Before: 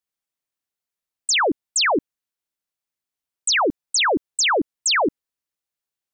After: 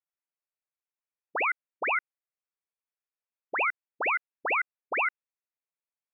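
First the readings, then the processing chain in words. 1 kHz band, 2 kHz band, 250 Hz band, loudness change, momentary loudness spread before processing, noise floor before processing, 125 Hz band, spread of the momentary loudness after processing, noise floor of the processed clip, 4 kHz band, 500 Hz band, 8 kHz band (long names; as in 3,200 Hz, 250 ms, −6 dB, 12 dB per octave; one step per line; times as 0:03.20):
−7.5 dB, −5.0 dB, −24.0 dB, −9.5 dB, 6 LU, below −85 dBFS, below −25 dB, 3 LU, below −85 dBFS, below −25 dB, −14.0 dB, below −40 dB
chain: ring modulation 950 Hz
voice inversion scrambler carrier 2,700 Hz
high-pass filter 400 Hz 24 dB per octave
level −4.5 dB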